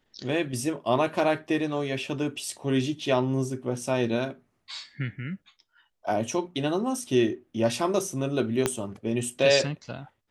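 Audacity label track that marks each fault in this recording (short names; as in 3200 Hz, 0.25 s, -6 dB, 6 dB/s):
8.660000	8.660000	pop -8 dBFS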